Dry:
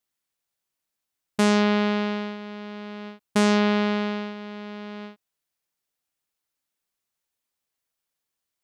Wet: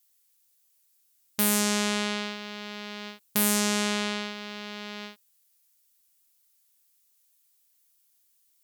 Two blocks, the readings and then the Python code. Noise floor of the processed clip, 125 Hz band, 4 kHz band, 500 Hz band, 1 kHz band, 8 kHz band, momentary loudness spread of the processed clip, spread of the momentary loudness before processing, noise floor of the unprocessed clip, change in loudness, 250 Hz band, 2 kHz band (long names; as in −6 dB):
−68 dBFS, can't be measured, +2.5 dB, −8.0 dB, −5.5 dB, +11.5 dB, 16 LU, 17 LU, −84 dBFS, −4.0 dB, −7.0 dB, −2.0 dB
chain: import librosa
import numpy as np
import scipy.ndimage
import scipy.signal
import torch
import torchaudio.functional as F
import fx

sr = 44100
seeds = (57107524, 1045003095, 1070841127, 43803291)

y = fx.fold_sine(x, sr, drive_db=6, ceiling_db=-10.0)
y = librosa.effects.preemphasis(y, coef=0.9, zi=[0.0])
y = y * 10.0 ** (4.5 / 20.0)